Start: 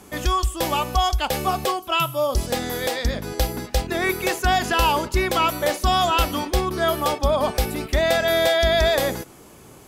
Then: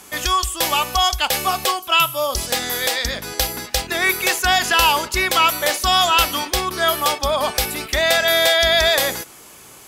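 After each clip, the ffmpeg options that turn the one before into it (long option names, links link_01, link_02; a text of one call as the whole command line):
ffmpeg -i in.wav -af "tiltshelf=frequency=790:gain=-7.5,volume=1.5dB" out.wav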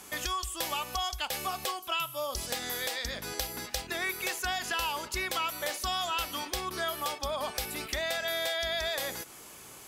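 ffmpeg -i in.wav -af "acompressor=threshold=-28dB:ratio=2.5,volume=-6dB" out.wav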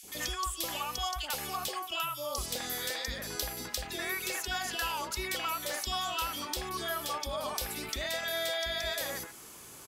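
ffmpeg -i in.wav -filter_complex "[0:a]acrossover=split=700|2400[link_01][link_02][link_03];[link_01]adelay=30[link_04];[link_02]adelay=80[link_05];[link_04][link_05][link_03]amix=inputs=3:normalize=0" out.wav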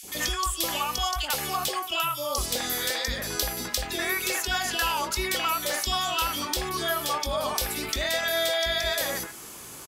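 ffmpeg -i in.wav -filter_complex "[0:a]asplit=2[link_01][link_02];[link_02]adelay=21,volume=-13dB[link_03];[link_01][link_03]amix=inputs=2:normalize=0,volume=7dB" out.wav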